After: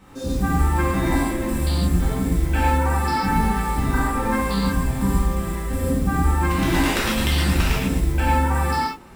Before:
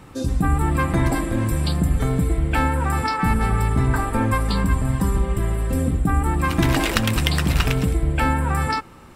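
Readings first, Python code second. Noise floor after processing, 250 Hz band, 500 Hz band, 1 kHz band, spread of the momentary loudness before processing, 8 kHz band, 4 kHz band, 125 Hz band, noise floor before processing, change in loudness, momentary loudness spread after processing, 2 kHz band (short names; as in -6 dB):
-30 dBFS, +0.5 dB, 0.0 dB, +1.5 dB, 3 LU, +0.5 dB, -0.5 dB, -2.0 dB, -42 dBFS, -0.5 dB, 4 LU, 0.0 dB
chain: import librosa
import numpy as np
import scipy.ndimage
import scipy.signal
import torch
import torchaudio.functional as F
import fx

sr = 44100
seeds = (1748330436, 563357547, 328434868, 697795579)

y = fx.mod_noise(x, sr, seeds[0], snr_db=25)
y = fx.rev_gated(y, sr, seeds[1], gate_ms=180, shape='flat', drr_db=-8.0)
y = F.gain(torch.from_numpy(y), -8.5).numpy()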